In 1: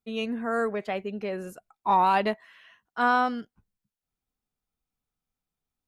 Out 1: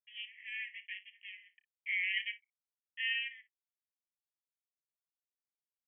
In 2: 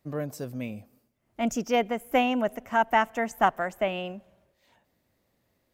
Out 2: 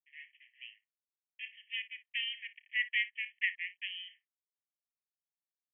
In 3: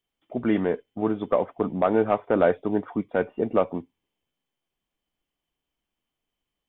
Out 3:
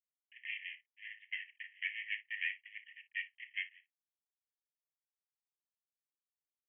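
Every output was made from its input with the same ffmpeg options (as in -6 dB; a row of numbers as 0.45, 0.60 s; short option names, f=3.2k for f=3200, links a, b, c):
-filter_complex "[0:a]anlmdn=0.0631,aeval=exprs='max(val(0),0)':c=same,afreqshift=-13,aeval=exprs='sgn(val(0))*max(abs(val(0))-0.00299,0)':c=same,asplit=2[a][b];[b]aecho=0:1:31|57:0.168|0.15[c];[a][c]amix=inputs=2:normalize=0,afreqshift=380,asuperpass=centerf=2400:order=20:qfactor=1.7"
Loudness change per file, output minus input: -10.5, -8.5, -17.0 LU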